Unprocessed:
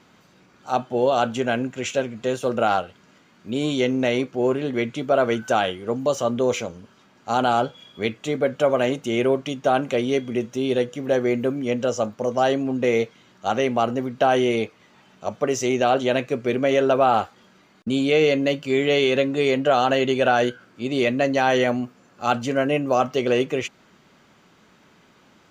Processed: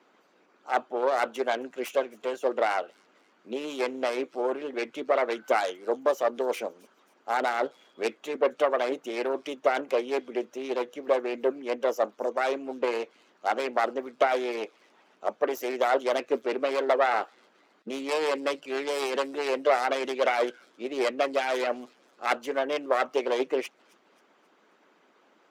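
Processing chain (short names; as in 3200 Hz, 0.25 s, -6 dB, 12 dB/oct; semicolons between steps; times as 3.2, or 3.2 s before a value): self-modulated delay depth 0.26 ms; HPF 290 Hz 24 dB/oct; high shelf 2600 Hz -10.5 dB; thin delay 0.267 s, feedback 47%, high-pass 4400 Hz, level -18.5 dB; harmonic-percussive split harmonic -10 dB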